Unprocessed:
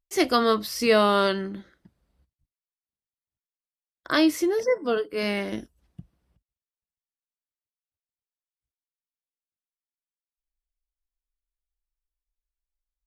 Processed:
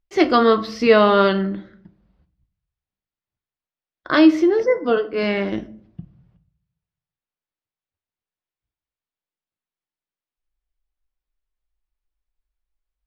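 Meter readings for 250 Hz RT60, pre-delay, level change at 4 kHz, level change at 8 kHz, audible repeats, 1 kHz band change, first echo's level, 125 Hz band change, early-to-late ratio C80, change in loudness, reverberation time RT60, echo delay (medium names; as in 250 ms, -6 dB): 0.85 s, 5 ms, +1.0 dB, no reading, no echo, +5.5 dB, no echo, +7.5 dB, 20.5 dB, +6.0 dB, 0.60 s, no echo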